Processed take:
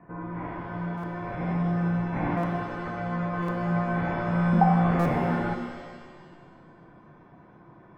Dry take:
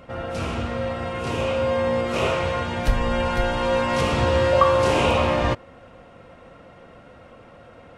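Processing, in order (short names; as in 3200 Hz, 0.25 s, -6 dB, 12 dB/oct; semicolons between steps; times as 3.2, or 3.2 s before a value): in parallel at -10 dB: Schmitt trigger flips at -18 dBFS; on the sum: mistuned SSB -360 Hz 460–2100 Hz; stuck buffer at 0.97/2.37/3.42/4.99/5.62, samples 256, times 10; shimmer reverb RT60 1.6 s, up +7 st, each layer -8 dB, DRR 5.5 dB; gain -4 dB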